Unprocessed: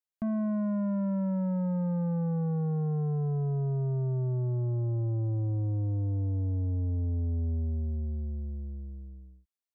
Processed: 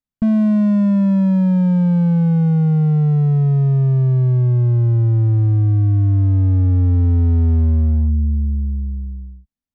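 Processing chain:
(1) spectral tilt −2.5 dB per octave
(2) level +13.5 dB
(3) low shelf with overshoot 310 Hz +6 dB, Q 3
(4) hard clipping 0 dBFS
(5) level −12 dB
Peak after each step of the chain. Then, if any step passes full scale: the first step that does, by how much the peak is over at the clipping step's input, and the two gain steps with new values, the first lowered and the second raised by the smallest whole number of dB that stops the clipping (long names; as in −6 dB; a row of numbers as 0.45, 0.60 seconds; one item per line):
−17.0, −3.5, +4.0, 0.0, −12.0 dBFS
step 3, 4.0 dB
step 2 +9.5 dB, step 5 −8 dB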